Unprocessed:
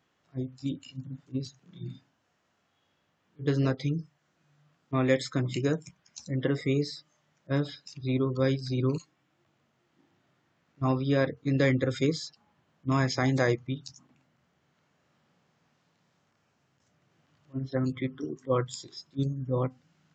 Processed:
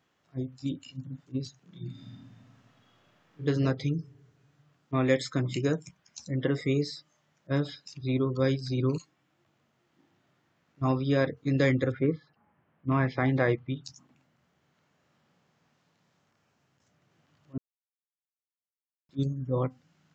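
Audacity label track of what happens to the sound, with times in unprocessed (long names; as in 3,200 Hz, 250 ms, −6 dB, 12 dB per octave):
1.910000	3.430000	thrown reverb, RT60 2 s, DRR −7 dB
11.900000	13.830000	low-pass filter 1,800 Hz → 4,000 Hz 24 dB per octave
17.580000	19.090000	silence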